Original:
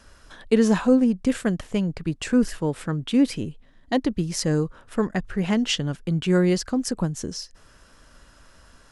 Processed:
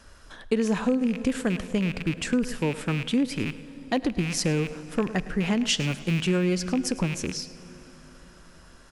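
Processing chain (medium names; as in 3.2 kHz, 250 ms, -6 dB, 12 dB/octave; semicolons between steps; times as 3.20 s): rattle on loud lows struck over -34 dBFS, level -22 dBFS; 5.64–6.27 s: treble shelf 5.3 kHz +7 dB; delay 106 ms -18 dB; plate-style reverb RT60 4.8 s, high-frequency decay 0.75×, DRR 17 dB; compression 6:1, threshold -20 dBFS, peak gain reduction 8 dB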